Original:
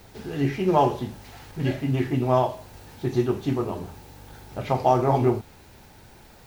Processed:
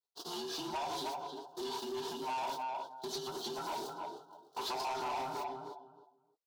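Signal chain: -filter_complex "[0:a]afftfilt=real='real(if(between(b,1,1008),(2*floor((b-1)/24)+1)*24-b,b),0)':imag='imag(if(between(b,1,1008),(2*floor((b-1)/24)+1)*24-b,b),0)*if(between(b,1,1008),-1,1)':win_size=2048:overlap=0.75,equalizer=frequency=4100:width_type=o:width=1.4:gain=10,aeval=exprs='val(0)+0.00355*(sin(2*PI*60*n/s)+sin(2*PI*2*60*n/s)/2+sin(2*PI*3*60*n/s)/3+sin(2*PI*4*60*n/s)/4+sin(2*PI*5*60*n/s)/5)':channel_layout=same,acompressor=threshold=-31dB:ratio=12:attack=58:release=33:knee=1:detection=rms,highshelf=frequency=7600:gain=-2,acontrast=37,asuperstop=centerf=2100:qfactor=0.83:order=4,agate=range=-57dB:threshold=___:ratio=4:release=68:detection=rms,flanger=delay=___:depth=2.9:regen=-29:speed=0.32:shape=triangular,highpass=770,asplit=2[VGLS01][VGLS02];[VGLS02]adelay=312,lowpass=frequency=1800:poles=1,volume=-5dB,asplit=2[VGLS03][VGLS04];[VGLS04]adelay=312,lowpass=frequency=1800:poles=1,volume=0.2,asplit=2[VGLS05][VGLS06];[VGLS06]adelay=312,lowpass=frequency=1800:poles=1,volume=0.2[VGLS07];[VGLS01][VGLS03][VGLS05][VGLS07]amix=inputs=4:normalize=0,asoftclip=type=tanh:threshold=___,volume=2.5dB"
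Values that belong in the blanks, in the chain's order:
-30dB, 5, -36.5dB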